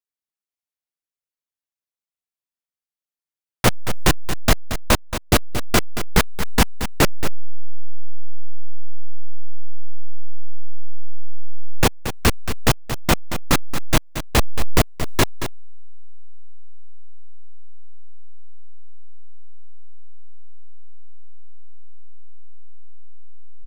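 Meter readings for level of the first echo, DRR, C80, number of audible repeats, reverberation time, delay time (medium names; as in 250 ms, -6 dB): -10.5 dB, no reverb, no reverb, 1, no reverb, 227 ms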